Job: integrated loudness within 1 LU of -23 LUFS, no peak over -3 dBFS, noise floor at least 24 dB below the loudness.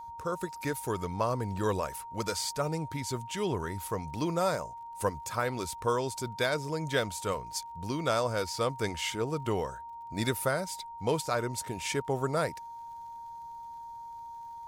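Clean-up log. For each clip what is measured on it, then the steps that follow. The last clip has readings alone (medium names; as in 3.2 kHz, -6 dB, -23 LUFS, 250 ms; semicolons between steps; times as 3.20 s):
tick rate 28 per s; steady tone 930 Hz; tone level -41 dBFS; loudness -32.5 LUFS; peak level -15.0 dBFS; loudness target -23.0 LUFS
-> de-click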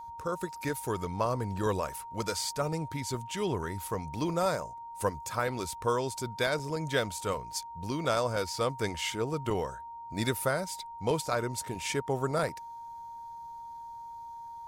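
tick rate 0.068 per s; steady tone 930 Hz; tone level -41 dBFS
-> band-stop 930 Hz, Q 30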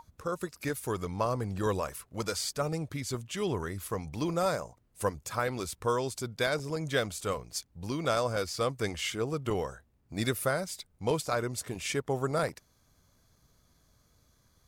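steady tone not found; loudness -33.0 LUFS; peak level -15.0 dBFS; loudness target -23.0 LUFS
-> trim +10 dB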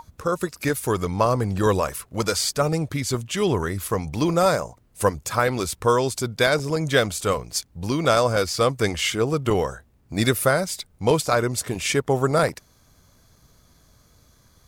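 loudness -23.0 LUFS; peak level -5.0 dBFS; noise floor -59 dBFS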